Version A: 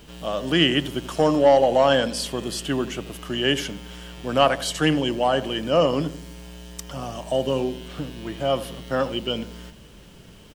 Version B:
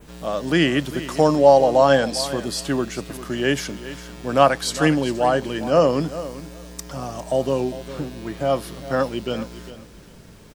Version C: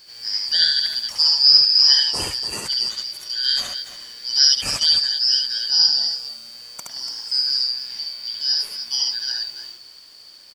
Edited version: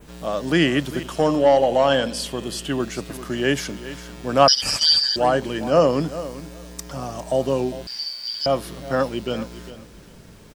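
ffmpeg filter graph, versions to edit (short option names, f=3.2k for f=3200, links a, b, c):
-filter_complex "[2:a]asplit=2[a][b];[1:a]asplit=4[c][d][e][f];[c]atrim=end=1.032[g];[0:a]atrim=start=1.028:end=2.802[h];[d]atrim=start=2.798:end=4.482[i];[a]atrim=start=4.478:end=5.162[j];[e]atrim=start=5.158:end=7.872[k];[b]atrim=start=7.868:end=8.462[l];[f]atrim=start=8.458[m];[g][h]acrossfade=d=0.004:c1=hsin:c2=hsin[n];[n][i]acrossfade=d=0.004:c1=hsin:c2=hsin[o];[o][j]acrossfade=d=0.004:c1=hsin:c2=hsin[p];[p][k]acrossfade=d=0.004:c1=hsin:c2=hsin[q];[q][l]acrossfade=d=0.004:c1=hsin:c2=hsin[r];[r][m]acrossfade=d=0.004:c1=hsin:c2=hsin"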